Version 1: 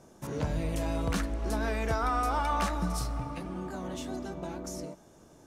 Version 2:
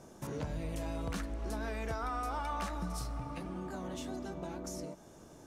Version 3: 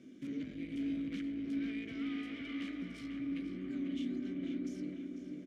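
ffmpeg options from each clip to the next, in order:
-af "acompressor=threshold=0.00708:ratio=2,volume=1.19"
-filter_complex "[0:a]aeval=exprs='(tanh(89.1*val(0)+0.5)-tanh(0.5))/89.1':c=same,asplit=3[s0][s1][s2];[s0]bandpass=f=270:t=q:w=8,volume=1[s3];[s1]bandpass=f=2290:t=q:w=8,volume=0.501[s4];[s2]bandpass=f=3010:t=q:w=8,volume=0.355[s5];[s3][s4][s5]amix=inputs=3:normalize=0,asplit=2[s6][s7];[s7]adelay=496,lowpass=f=2500:p=1,volume=0.631,asplit=2[s8][s9];[s9]adelay=496,lowpass=f=2500:p=1,volume=0.49,asplit=2[s10][s11];[s11]adelay=496,lowpass=f=2500:p=1,volume=0.49,asplit=2[s12][s13];[s13]adelay=496,lowpass=f=2500:p=1,volume=0.49,asplit=2[s14][s15];[s15]adelay=496,lowpass=f=2500:p=1,volume=0.49,asplit=2[s16][s17];[s17]adelay=496,lowpass=f=2500:p=1,volume=0.49[s18];[s6][s8][s10][s12][s14][s16][s18]amix=inputs=7:normalize=0,volume=4.73"

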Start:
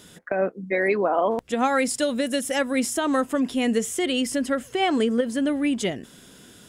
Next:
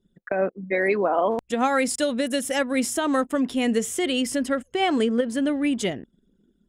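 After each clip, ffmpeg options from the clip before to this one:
-af "anlmdn=0.631"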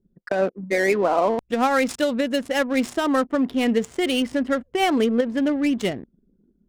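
-af "adynamicsmooth=sensitivity=5.5:basefreq=810,volume=1.26"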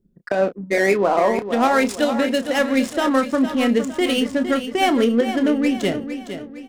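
-filter_complex "[0:a]asplit=2[s0][s1];[s1]adelay=30,volume=0.299[s2];[s0][s2]amix=inputs=2:normalize=0,asplit=2[s3][s4];[s4]aecho=0:1:459|918|1377|1836:0.316|0.133|0.0558|0.0234[s5];[s3][s5]amix=inputs=2:normalize=0,volume=1.26"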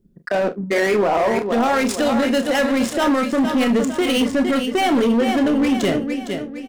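-filter_complex "[0:a]alimiter=limit=0.211:level=0:latency=1:release=29,asoftclip=type=hard:threshold=0.119,asplit=2[s0][s1];[s1]adelay=43,volume=0.211[s2];[s0][s2]amix=inputs=2:normalize=0,volume=1.78"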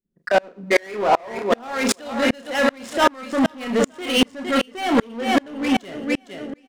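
-filter_complex "[0:a]asplit=2[s0][s1];[s1]highpass=f=720:p=1,volume=2.51,asoftclip=type=tanh:threshold=0.266[s2];[s0][s2]amix=inputs=2:normalize=0,lowpass=f=7700:p=1,volume=0.501,aecho=1:1:114|228:0.075|0.0247,aeval=exprs='val(0)*pow(10,-34*if(lt(mod(-2.6*n/s,1),2*abs(-2.6)/1000),1-mod(-2.6*n/s,1)/(2*abs(-2.6)/1000),(mod(-2.6*n/s,1)-2*abs(-2.6)/1000)/(1-2*abs(-2.6)/1000))/20)':c=same,volume=2.11"

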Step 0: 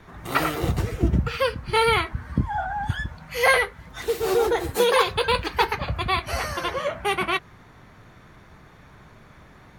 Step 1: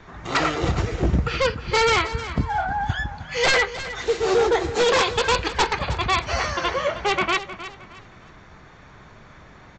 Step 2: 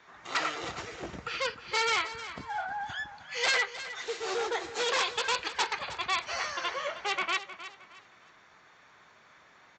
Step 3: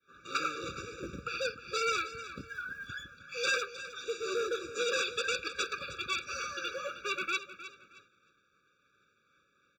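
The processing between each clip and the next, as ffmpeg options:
-af "equalizer=f=130:w=0.49:g=-3,aresample=16000,aeval=exprs='0.158*(abs(mod(val(0)/0.158+3,4)-2)-1)':c=same,aresample=44100,aecho=1:1:311|622|933:0.211|0.0655|0.0203,volume=1.5"
-af "highpass=f=1100:p=1,volume=0.501"
-af "agate=range=0.0224:threshold=0.00316:ratio=3:detection=peak,acrusher=bits=9:mode=log:mix=0:aa=0.000001,afftfilt=real='re*eq(mod(floor(b*sr/1024/560),2),0)':imag='im*eq(mod(floor(b*sr/1024/560),2),0)':win_size=1024:overlap=0.75"

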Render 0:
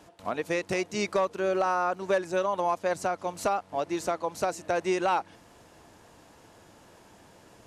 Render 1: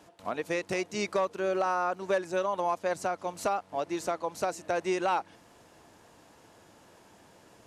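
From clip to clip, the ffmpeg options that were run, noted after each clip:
-af "lowshelf=f=74:g=-7.5,volume=0.794"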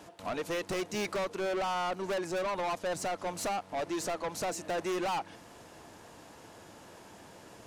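-af "asoftclip=type=tanh:threshold=0.0178,volume=1.78"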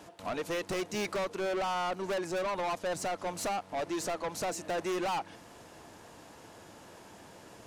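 -af anull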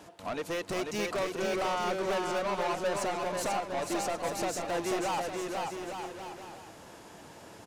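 -af "aecho=1:1:490|857.5|1133|1340|1495:0.631|0.398|0.251|0.158|0.1"

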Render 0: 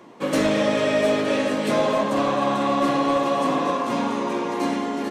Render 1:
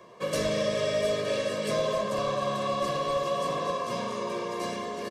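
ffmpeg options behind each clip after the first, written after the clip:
-filter_complex "[0:a]equalizer=f=5000:w=4.7:g=4,aecho=1:1:1.8:0.85,acrossover=split=400|3000[s0][s1][s2];[s1]acompressor=threshold=0.0178:ratio=1.5[s3];[s0][s3][s2]amix=inputs=3:normalize=0,volume=0.531"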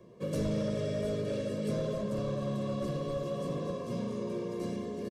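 -af "firequalizer=gain_entry='entry(110,0);entry(1100,-19);entry(11000,-14)':delay=0.05:min_phase=1,asoftclip=type=tanh:threshold=0.0447,equalizer=f=750:t=o:w=0.77:g=-6.5,volume=1.88"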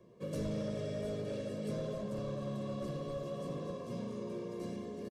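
-filter_complex "[0:a]asplit=5[s0][s1][s2][s3][s4];[s1]adelay=90,afreqshift=86,volume=0.0794[s5];[s2]adelay=180,afreqshift=172,volume=0.0407[s6];[s3]adelay=270,afreqshift=258,volume=0.0207[s7];[s4]adelay=360,afreqshift=344,volume=0.0106[s8];[s0][s5][s6][s7][s8]amix=inputs=5:normalize=0,volume=0.531"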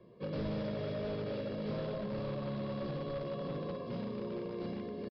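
-filter_complex "[0:a]asplit=2[s0][s1];[s1]aeval=exprs='(mod(50.1*val(0)+1,2)-1)/50.1':c=same,volume=0.251[s2];[s0][s2]amix=inputs=2:normalize=0,aresample=11025,aresample=44100"

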